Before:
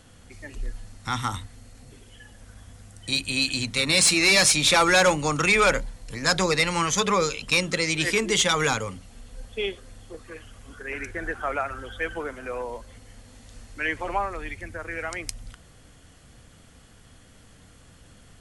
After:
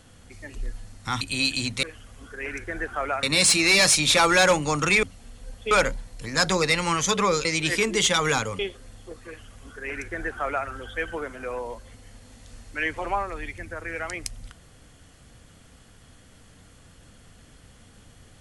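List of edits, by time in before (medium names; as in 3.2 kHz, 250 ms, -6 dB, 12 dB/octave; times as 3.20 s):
1.21–3.18 s: delete
7.34–7.80 s: delete
8.94–9.62 s: move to 5.60 s
10.30–11.70 s: copy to 3.80 s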